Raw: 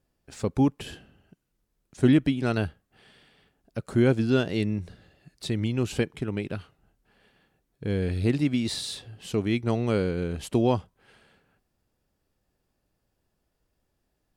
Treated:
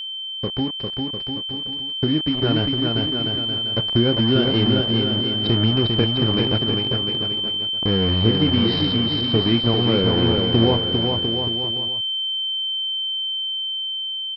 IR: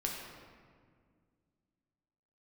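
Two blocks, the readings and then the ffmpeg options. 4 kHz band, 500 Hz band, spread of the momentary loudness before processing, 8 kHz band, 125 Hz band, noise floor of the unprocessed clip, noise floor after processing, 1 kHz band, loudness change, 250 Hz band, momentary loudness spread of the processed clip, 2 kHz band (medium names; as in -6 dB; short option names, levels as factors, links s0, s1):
+24.0 dB, +6.0 dB, 15 LU, under -15 dB, +7.0 dB, -77 dBFS, -30 dBFS, +6.5 dB, +7.0 dB, +5.5 dB, 7 LU, +4.5 dB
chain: -filter_complex "[0:a]asplit=2[s0][s1];[s1]adelay=26,volume=0.316[s2];[s0][s2]amix=inputs=2:normalize=0,aresample=11025,acrusher=bits=4:mix=0:aa=0.5,aresample=44100,acompressor=threshold=0.0631:ratio=4,highshelf=f=2600:g=-11.5,aecho=1:1:400|700|925|1094|1220:0.631|0.398|0.251|0.158|0.1,aeval=exprs='val(0)+0.0316*sin(2*PI*3100*n/s)':c=same,dynaudnorm=f=510:g=9:m=2,volume=1.33"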